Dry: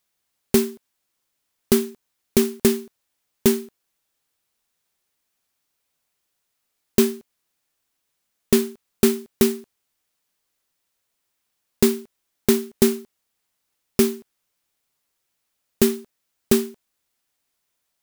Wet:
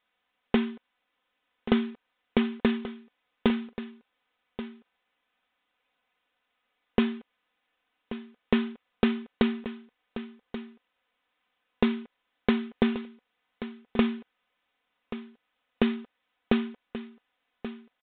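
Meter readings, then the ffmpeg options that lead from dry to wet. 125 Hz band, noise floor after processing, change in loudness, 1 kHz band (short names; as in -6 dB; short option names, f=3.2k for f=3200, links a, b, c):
-7.0 dB, -80 dBFS, -8.0 dB, +1.5 dB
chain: -filter_complex "[0:a]aecho=1:1:4:0.71,acompressor=threshold=-19dB:ratio=3,asplit=2[a][b];[b]highpass=f=720:p=1,volume=10dB,asoftclip=type=tanh:threshold=-3dB[c];[a][c]amix=inputs=2:normalize=0,lowpass=f=2.6k:p=1,volume=-6dB,aecho=1:1:1132:0.224,aresample=8000,aresample=44100"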